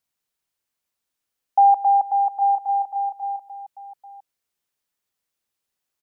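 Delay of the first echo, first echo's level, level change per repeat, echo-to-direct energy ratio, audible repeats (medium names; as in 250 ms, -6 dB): 126 ms, -18.0 dB, no regular repeats, -10.5 dB, 2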